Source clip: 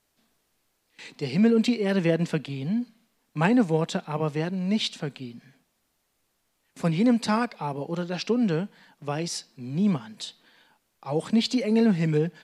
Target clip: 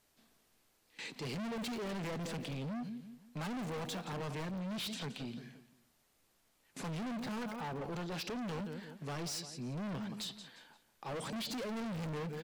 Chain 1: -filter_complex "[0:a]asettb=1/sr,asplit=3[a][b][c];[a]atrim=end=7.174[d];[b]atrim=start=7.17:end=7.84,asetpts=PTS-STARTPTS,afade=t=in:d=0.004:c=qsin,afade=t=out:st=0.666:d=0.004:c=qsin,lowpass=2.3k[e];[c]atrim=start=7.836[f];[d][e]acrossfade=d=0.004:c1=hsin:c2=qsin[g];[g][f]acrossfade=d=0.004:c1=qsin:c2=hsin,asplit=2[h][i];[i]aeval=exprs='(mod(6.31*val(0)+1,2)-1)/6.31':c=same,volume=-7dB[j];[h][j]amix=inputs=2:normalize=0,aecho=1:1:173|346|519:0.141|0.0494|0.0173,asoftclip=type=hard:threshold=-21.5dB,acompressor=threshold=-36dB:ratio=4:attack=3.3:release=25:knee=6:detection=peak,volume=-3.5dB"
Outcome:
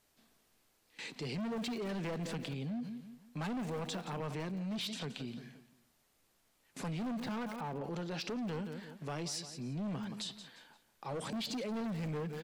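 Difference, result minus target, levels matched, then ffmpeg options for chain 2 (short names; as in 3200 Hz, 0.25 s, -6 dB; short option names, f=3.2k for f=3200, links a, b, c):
hard clip: distortion -6 dB
-filter_complex "[0:a]asettb=1/sr,asplit=3[a][b][c];[a]atrim=end=7.174[d];[b]atrim=start=7.17:end=7.84,asetpts=PTS-STARTPTS,afade=t=in:d=0.004:c=qsin,afade=t=out:st=0.666:d=0.004:c=qsin,lowpass=2.3k[e];[c]atrim=start=7.836[f];[d][e]acrossfade=d=0.004:c1=hsin:c2=qsin[g];[g][f]acrossfade=d=0.004:c1=qsin:c2=hsin,asplit=2[h][i];[i]aeval=exprs='(mod(6.31*val(0)+1,2)-1)/6.31':c=same,volume=-7dB[j];[h][j]amix=inputs=2:normalize=0,aecho=1:1:173|346|519:0.141|0.0494|0.0173,asoftclip=type=hard:threshold=-31dB,acompressor=threshold=-36dB:ratio=4:attack=3.3:release=25:knee=6:detection=peak,volume=-3.5dB"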